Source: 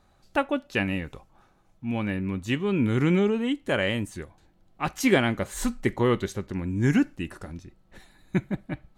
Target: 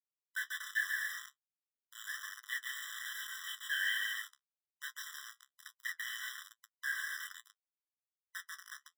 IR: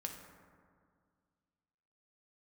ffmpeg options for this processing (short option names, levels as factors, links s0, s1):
-filter_complex "[0:a]asettb=1/sr,asplit=3[s0][s1][s2];[s0]atrim=end=4.884[s3];[s1]atrim=start=4.88:end=5.65,asetpts=PTS-STARTPTS,afade=t=in:d=0.004:c=qsin,afade=t=out:st=0.766:d=0.004:c=qsin,acompressor=threshold=0.0224:ratio=10[s4];[s2]atrim=start=5.646[s5];[s3][s4]acrossfade=d=0.004:c1=hsin:c2=qsin[s6];[s6][s5]acrossfade=d=0.004:c1=qsin:c2=hsin,asplit=2[s7][s8];[s8]adelay=28,volume=0.75[s9];[s7][s9]amix=inputs=2:normalize=0,asplit=2[s10][s11];[s11]aecho=0:1:140|231|290.2|328.6|353.6:0.631|0.398|0.251|0.158|0.1[s12];[s10][s12]amix=inputs=2:normalize=0,afftfilt=real='re*between(b*sr/4096,1500,6600)':imag='im*between(b*sr/4096,1500,6600)':win_size=4096:overlap=0.75,aemphasis=mode=reproduction:type=50fm,acrusher=bits=5:mix=0:aa=0.000001,flanger=delay=8.5:depth=8:regen=43:speed=1.2:shape=sinusoidal,afftfilt=real='re*eq(mod(floor(b*sr/1024/1000),2),1)':imag='im*eq(mod(floor(b*sr/1024/1000),2),1)':win_size=1024:overlap=0.75,volume=1.12"